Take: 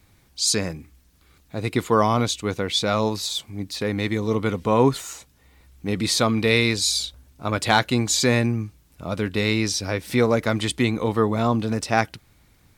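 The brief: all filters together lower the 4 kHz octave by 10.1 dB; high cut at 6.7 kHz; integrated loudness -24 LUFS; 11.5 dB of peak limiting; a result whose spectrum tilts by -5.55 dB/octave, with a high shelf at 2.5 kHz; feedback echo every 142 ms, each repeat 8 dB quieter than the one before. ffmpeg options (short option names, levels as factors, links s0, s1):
-af "lowpass=6700,highshelf=f=2500:g=-8.5,equalizer=f=4000:t=o:g=-4,alimiter=limit=0.15:level=0:latency=1,aecho=1:1:142|284|426|568|710:0.398|0.159|0.0637|0.0255|0.0102,volume=1.68"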